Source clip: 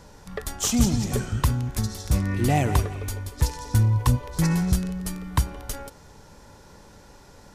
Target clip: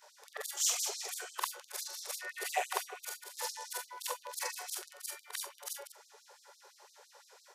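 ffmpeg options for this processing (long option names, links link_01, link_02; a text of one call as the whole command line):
ffmpeg -i in.wav -af "afftfilt=real='re':imag='-im':win_size=4096:overlap=0.75,afftfilt=real='re*gte(b*sr/1024,360*pow(3800/360,0.5+0.5*sin(2*PI*5.9*pts/sr)))':imag='im*gte(b*sr/1024,360*pow(3800/360,0.5+0.5*sin(2*PI*5.9*pts/sr)))':win_size=1024:overlap=0.75" out.wav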